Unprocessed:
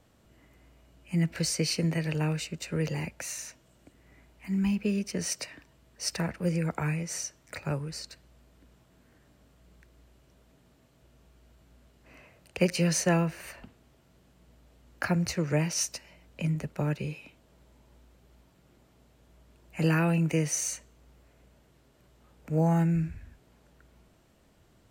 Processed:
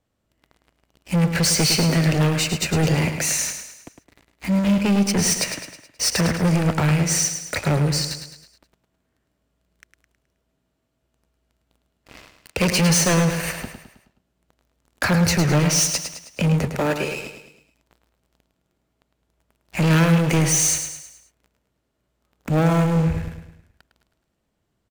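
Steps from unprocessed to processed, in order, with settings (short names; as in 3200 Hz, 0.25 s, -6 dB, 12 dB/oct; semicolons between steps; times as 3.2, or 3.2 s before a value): 16.71–17.15 HPF 360 Hz 12 dB/oct; sample leveller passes 5; feedback echo 0.106 s, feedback 47%, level -8 dB; gain -2 dB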